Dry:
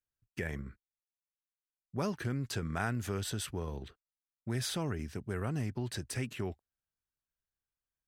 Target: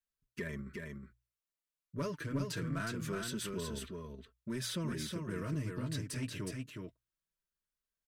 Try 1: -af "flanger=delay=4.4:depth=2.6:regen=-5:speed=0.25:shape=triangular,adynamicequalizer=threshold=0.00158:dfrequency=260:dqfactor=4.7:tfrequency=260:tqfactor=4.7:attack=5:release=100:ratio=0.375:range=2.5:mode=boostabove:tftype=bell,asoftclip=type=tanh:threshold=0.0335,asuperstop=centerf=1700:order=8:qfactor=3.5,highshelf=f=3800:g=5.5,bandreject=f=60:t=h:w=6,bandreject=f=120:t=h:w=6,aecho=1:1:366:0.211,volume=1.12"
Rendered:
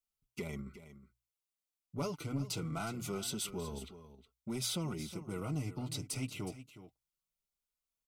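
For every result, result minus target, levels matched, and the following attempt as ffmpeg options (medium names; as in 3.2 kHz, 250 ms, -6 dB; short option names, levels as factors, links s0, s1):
echo-to-direct -9.5 dB; 2 kHz band -5.5 dB; 8 kHz band +3.0 dB
-af "flanger=delay=4.4:depth=2.6:regen=-5:speed=0.25:shape=triangular,adynamicequalizer=threshold=0.00158:dfrequency=260:dqfactor=4.7:tfrequency=260:tqfactor=4.7:attack=5:release=100:ratio=0.375:range=2.5:mode=boostabove:tftype=bell,asoftclip=type=tanh:threshold=0.0335,asuperstop=centerf=1700:order=8:qfactor=3.5,highshelf=f=3800:g=5.5,bandreject=f=60:t=h:w=6,bandreject=f=120:t=h:w=6,aecho=1:1:366:0.631,volume=1.12"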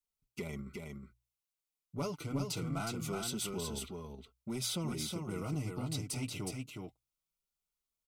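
2 kHz band -5.0 dB; 8 kHz band +3.5 dB
-af "flanger=delay=4.4:depth=2.6:regen=-5:speed=0.25:shape=triangular,adynamicequalizer=threshold=0.00158:dfrequency=260:dqfactor=4.7:tfrequency=260:tqfactor=4.7:attack=5:release=100:ratio=0.375:range=2.5:mode=boostabove:tftype=bell,asoftclip=type=tanh:threshold=0.0335,asuperstop=centerf=780:order=8:qfactor=3.5,highshelf=f=3800:g=5.5,bandreject=f=60:t=h:w=6,bandreject=f=120:t=h:w=6,aecho=1:1:366:0.631,volume=1.12"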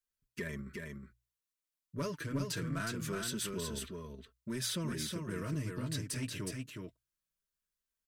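8 kHz band +3.5 dB
-af "flanger=delay=4.4:depth=2.6:regen=-5:speed=0.25:shape=triangular,adynamicequalizer=threshold=0.00158:dfrequency=260:dqfactor=4.7:tfrequency=260:tqfactor=4.7:attack=5:release=100:ratio=0.375:range=2.5:mode=boostabove:tftype=bell,asoftclip=type=tanh:threshold=0.0335,asuperstop=centerf=780:order=8:qfactor=3.5,bandreject=f=60:t=h:w=6,bandreject=f=120:t=h:w=6,aecho=1:1:366:0.631,volume=1.12"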